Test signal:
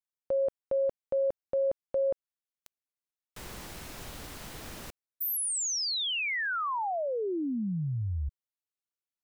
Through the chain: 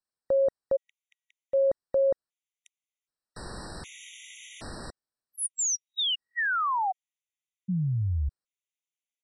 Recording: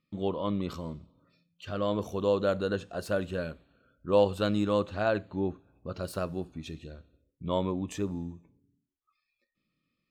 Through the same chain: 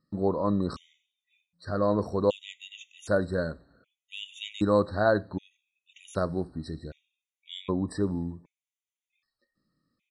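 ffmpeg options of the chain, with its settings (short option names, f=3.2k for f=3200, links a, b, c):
-af "aresample=22050,aresample=44100,afftfilt=real='re*gt(sin(2*PI*0.65*pts/sr)*(1-2*mod(floor(b*sr/1024/1900),2)),0)':imag='im*gt(sin(2*PI*0.65*pts/sr)*(1-2*mod(floor(b*sr/1024/1900),2)),0)':win_size=1024:overlap=0.75,volume=4.5dB"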